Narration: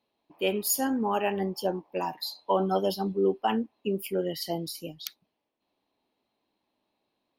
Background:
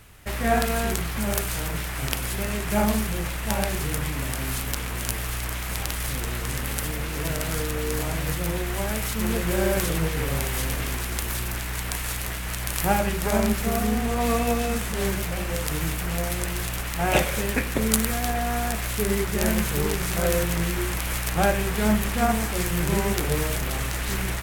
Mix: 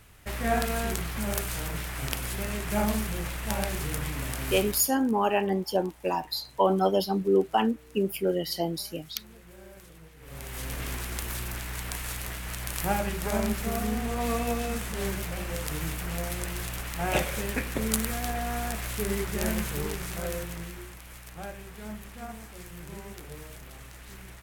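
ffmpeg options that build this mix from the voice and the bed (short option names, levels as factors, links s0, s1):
-filter_complex "[0:a]adelay=4100,volume=1.33[s0];[1:a]volume=6.31,afade=t=out:st=4.59:d=0.31:silence=0.0841395,afade=t=in:st=10.2:d=0.69:silence=0.0944061,afade=t=out:st=19.47:d=1.5:silence=0.223872[s1];[s0][s1]amix=inputs=2:normalize=0"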